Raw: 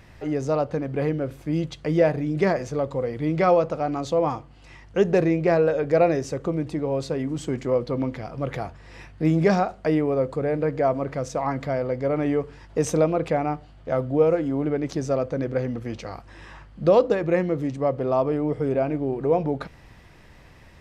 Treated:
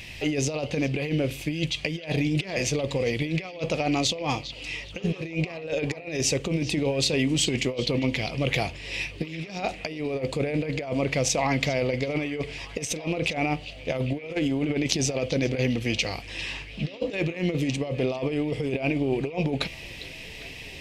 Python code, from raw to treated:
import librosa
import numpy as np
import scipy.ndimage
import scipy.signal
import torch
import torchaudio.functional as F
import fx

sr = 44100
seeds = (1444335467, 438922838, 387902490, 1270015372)

y = fx.high_shelf_res(x, sr, hz=1900.0, db=10.5, q=3.0)
y = fx.over_compress(y, sr, threshold_db=-26.0, ratio=-0.5)
y = fx.echo_stepped(y, sr, ms=402, hz=3700.0, octaves=-0.7, feedback_pct=70, wet_db=-11)